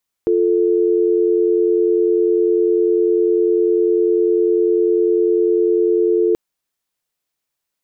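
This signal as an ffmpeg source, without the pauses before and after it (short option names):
-f lavfi -i "aevalsrc='0.178*(sin(2*PI*350*t)+sin(2*PI*440*t))':d=6.08:s=44100"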